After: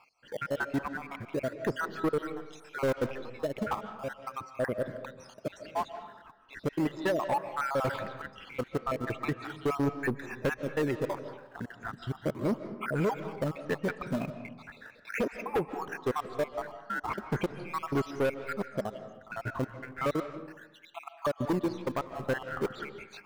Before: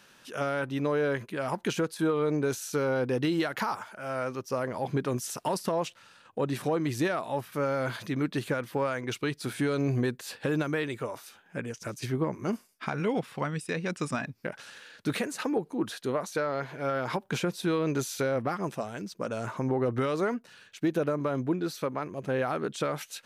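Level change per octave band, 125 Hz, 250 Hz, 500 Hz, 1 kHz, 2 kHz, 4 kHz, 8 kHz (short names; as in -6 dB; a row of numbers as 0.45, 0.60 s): -4.5, -4.0, -3.0, -1.0, -1.5, -7.0, -11.5 dB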